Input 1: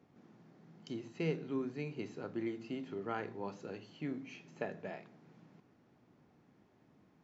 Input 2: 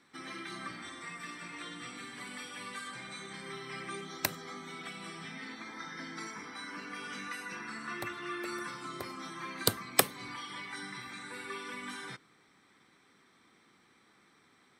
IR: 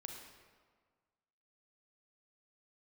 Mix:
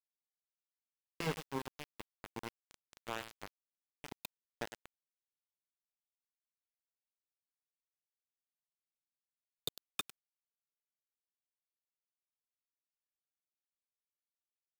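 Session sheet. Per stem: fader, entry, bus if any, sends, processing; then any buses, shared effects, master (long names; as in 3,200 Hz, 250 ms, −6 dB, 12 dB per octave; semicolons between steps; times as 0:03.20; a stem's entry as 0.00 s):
−2.0 dB, 0.00 s, send −21 dB, echo send −8.5 dB, harmonic generator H 5 −44 dB, 7 −14 dB, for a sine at −22.5 dBFS
−14.5 dB, 0.00 s, no send, echo send −11.5 dB, hollow resonant body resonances 2,500/3,600 Hz, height 18 dB, ringing for 45 ms; all-pass phaser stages 8, 2.4 Hz, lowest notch 250–1,800 Hz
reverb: on, RT60 1.6 s, pre-delay 32 ms
echo: repeating echo 102 ms, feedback 36%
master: centre clipping without the shift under −36 dBFS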